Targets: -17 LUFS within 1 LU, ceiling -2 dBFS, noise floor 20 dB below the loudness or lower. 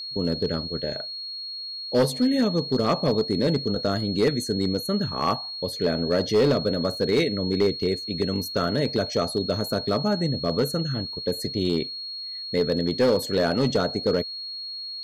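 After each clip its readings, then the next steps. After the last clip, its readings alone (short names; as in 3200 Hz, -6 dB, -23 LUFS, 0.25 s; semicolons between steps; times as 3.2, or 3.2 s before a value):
clipped 0.8%; flat tops at -14.5 dBFS; steady tone 4300 Hz; tone level -32 dBFS; loudness -25.0 LUFS; peak -14.5 dBFS; loudness target -17.0 LUFS
-> clip repair -14.5 dBFS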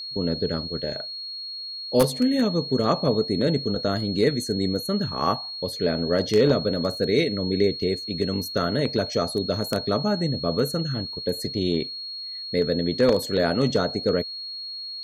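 clipped 0.0%; steady tone 4300 Hz; tone level -32 dBFS
-> notch 4300 Hz, Q 30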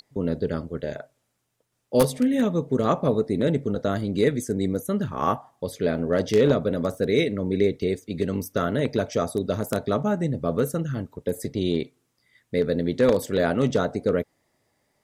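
steady tone none; loudness -25.0 LUFS; peak -5.0 dBFS; loudness target -17.0 LUFS
-> gain +8 dB; limiter -2 dBFS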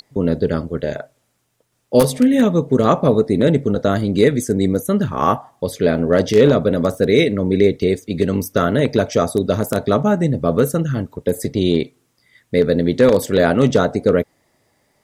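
loudness -17.0 LUFS; peak -2.0 dBFS; noise floor -66 dBFS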